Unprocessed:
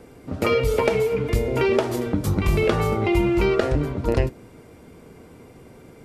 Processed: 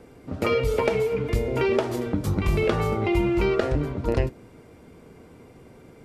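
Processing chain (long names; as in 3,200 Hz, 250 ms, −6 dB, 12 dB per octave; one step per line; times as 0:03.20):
high-shelf EQ 7,700 Hz −5 dB
level −2.5 dB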